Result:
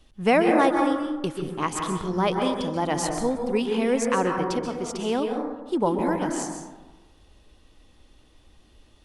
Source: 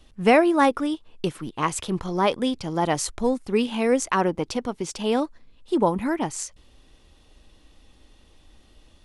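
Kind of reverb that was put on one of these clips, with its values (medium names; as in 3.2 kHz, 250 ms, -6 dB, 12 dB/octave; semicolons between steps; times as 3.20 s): plate-style reverb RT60 1.2 s, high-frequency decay 0.3×, pre-delay 120 ms, DRR 2.5 dB; trim -3 dB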